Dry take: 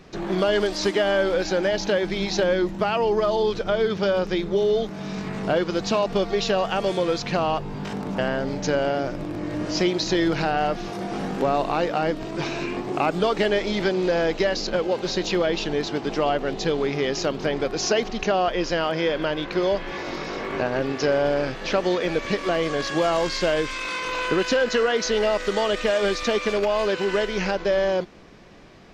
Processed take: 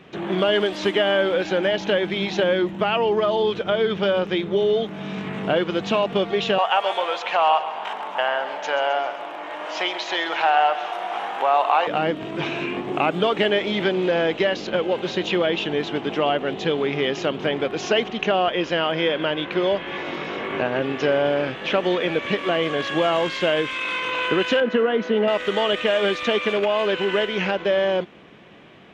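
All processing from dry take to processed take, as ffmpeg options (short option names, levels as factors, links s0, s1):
-filter_complex "[0:a]asettb=1/sr,asplit=3[s0][s1][s2];[s0]atrim=end=6.584[s3];[s1]atrim=start=6.58:end=11.87,asetpts=PTS-STARTPTS,afade=t=in:d=0.004:c=qsin,afade=t=out:st=5.286:d=0.004:c=qsin,highpass=f=830:t=q:w=2.4,aecho=1:1:132|264|396|528|660|792|924:0.237|0.142|0.0854|0.0512|0.0307|0.0184|0.0111,atrim=end_sample=233289[s4];[s2]atrim=start=11.866[s5];[s3][s4]acrossfade=d=0.004:c1=hsin:c2=qsin[s6];[s6][s5]acrossfade=d=0.004:c1=qsin:c2=hsin,asettb=1/sr,asplit=3[s7][s8][s9];[s7]atrim=end=24.604[s10];[s8]atrim=start=24.6:end=25.28,asetpts=PTS-STARTPTS,afade=t=in:d=0.004:c=qsin,afade=t=out:st=0.676:d=0.004:c=qsin,lowpass=f=1100:p=1,lowshelf=f=150:t=q:w=3:g=-9.5[s11];[s9]atrim=start=25.276[s12];[s10][s11]acrossfade=d=0.004:c1=hsin:c2=qsin[s13];[s13][s12]acrossfade=d=0.004:c1=qsin:c2=hsin,highpass=110,highshelf=f=3900:t=q:w=3:g=-6.5,volume=1.12"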